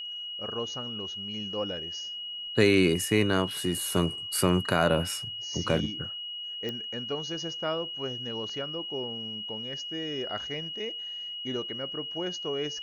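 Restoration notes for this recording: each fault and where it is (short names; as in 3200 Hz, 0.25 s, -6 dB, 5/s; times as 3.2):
tone 2900 Hz -35 dBFS
6.69 pop -21 dBFS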